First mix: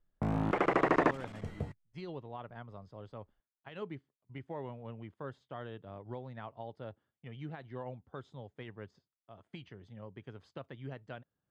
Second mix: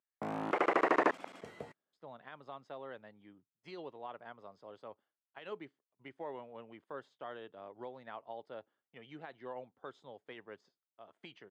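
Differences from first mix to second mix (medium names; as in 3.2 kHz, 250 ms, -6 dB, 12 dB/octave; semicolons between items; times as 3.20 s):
speech: entry +1.70 s; master: add high-pass 350 Hz 12 dB/octave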